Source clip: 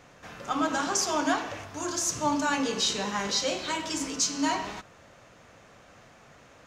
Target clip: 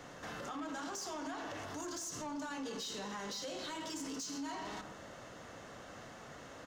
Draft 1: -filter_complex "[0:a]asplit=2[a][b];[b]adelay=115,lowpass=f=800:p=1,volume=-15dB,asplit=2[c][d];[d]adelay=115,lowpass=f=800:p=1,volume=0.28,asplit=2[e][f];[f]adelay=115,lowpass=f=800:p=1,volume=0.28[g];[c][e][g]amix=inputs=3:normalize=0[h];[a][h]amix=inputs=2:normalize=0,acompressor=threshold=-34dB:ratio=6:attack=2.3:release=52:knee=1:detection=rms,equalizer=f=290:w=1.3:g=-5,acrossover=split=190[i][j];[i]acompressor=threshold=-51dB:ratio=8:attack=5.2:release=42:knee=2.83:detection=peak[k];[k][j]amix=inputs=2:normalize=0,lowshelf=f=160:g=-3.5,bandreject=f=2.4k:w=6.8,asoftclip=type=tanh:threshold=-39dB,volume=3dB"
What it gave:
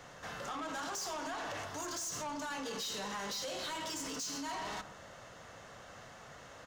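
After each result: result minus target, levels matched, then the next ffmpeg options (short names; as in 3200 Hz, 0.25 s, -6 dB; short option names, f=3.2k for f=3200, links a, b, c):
compressor: peak gain reduction -6.5 dB; 250 Hz band -6.0 dB
-filter_complex "[0:a]asplit=2[a][b];[b]adelay=115,lowpass=f=800:p=1,volume=-15dB,asplit=2[c][d];[d]adelay=115,lowpass=f=800:p=1,volume=0.28,asplit=2[e][f];[f]adelay=115,lowpass=f=800:p=1,volume=0.28[g];[c][e][g]amix=inputs=3:normalize=0[h];[a][h]amix=inputs=2:normalize=0,acompressor=threshold=-41.5dB:ratio=6:attack=2.3:release=52:knee=1:detection=rms,equalizer=f=290:w=1.3:g=-5,acrossover=split=190[i][j];[i]acompressor=threshold=-51dB:ratio=8:attack=5.2:release=42:knee=2.83:detection=peak[k];[k][j]amix=inputs=2:normalize=0,lowshelf=f=160:g=-3.5,bandreject=f=2.4k:w=6.8,asoftclip=type=tanh:threshold=-39dB,volume=3dB"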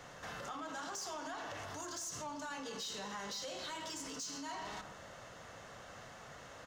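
250 Hz band -5.5 dB
-filter_complex "[0:a]asplit=2[a][b];[b]adelay=115,lowpass=f=800:p=1,volume=-15dB,asplit=2[c][d];[d]adelay=115,lowpass=f=800:p=1,volume=0.28,asplit=2[e][f];[f]adelay=115,lowpass=f=800:p=1,volume=0.28[g];[c][e][g]amix=inputs=3:normalize=0[h];[a][h]amix=inputs=2:normalize=0,acompressor=threshold=-41.5dB:ratio=6:attack=2.3:release=52:knee=1:detection=rms,equalizer=f=290:w=1.3:g=3,acrossover=split=190[i][j];[i]acompressor=threshold=-51dB:ratio=8:attack=5.2:release=42:knee=2.83:detection=peak[k];[k][j]amix=inputs=2:normalize=0,lowshelf=f=160:g=-3.5,bandreject=f=2.4k:w=6.8,asoftclip=type=tanh:threshold=-39dB,volume=3dB"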